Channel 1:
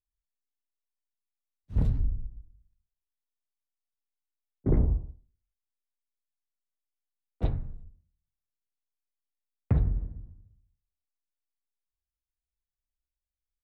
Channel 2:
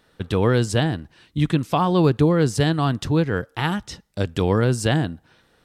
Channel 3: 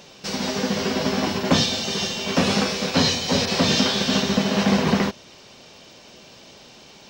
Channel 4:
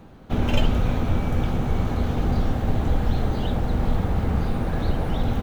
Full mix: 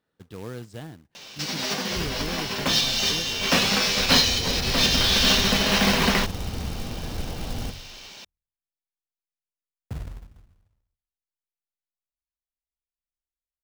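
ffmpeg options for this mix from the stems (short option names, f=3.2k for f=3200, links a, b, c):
-filter_complex "[0:a]adelay=200,volume=-10dB[a];[1:a]highpass=f=130:p=1,lowshelf=f=390:g=5,volume=-20dB,asplit=2[b][c];[2:a]tiltshelf=f=1.2k:g=-7.5,adelay=1150,volume=2dB[d];[3:a]adelay=2300,volume=-8.5dB,afade=t=in:st=3.85:d=0.3:silence=0.251189[e];[c]apad=whole_len=363688[f];[d][f]sidechaincompress=threshold=-38dB:ratio=5:attack=6.7:release=303[g];[a][b][g][e]amix=inputs=4:normalize=0,highshelf=f=6.7k:g=-10.5,acrusher=bits=3:mode=log:mix=0:aa=0.000001"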